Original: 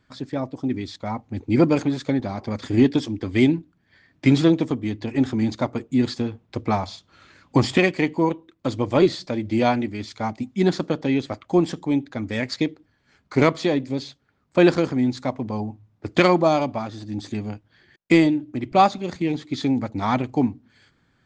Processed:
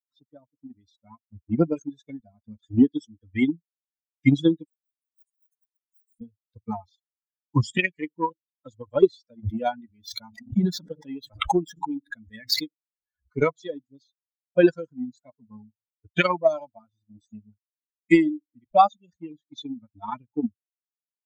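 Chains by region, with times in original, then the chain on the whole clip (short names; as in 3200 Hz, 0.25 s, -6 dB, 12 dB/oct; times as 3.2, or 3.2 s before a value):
4.64–6.21 G.711 law mismatch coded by mu + inverse Chebyshev high-pass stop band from 2000 Hz, stop band 70 dB + differentiator
9.43–13.35 median filter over 5 samples + backwards sustainer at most 47 dB/s
whole clip: per-bin expansion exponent 3; transient shaper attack +5 dB, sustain 0 dB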